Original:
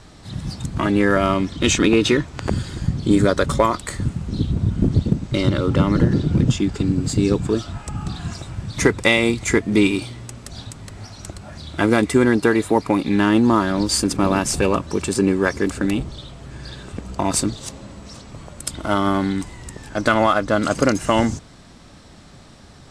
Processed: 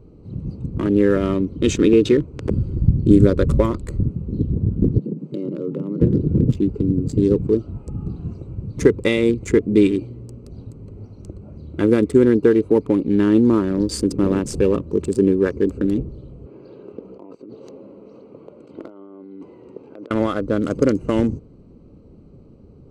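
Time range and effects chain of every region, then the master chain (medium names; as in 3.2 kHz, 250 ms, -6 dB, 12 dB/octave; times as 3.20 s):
2.58–4.03 s: bass shelf 130 Hz +11 dB + band-stop 450 Hz, Q 9.8
4.98–6.01 s: elliptic high-pass 150 Hz + compression 3:1, threshold -24 dBFS
16.46–20.11 s: compressor with a negative ratio -29 dBFS + band-pass 390–3900 Hz
whole clip: local Wiener filter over 25 samples; resonant low shelf 570 Hz +6.5 dB, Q 3; trim -7 dB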